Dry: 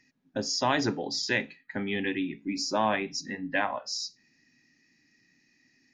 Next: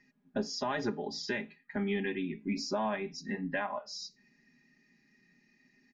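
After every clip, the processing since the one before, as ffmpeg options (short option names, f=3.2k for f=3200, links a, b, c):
-af "lowpass=f=1.9k:p=1,aecho=1:1:4.9:0.76,alimiter=limit=-22.5dB:level=0:latency=1:release=480"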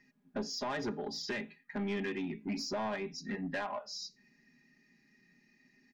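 -af "asoftclip=type=tanh:threshold=-30dB"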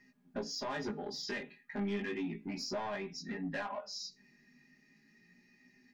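-filter_complex "[0:a]asplit=2[a][b];[b]acompressor=threshold=-43dB:ratio=6,volume=1dB[c];[a][c]amix=inputs=2:normalize=0,flanger=delay=16:depth=4.7:speed=0.35,volume=-2dB"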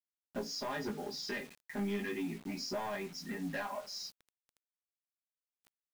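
-af "acrusher=bits=8:mix=0:aa=0.000001"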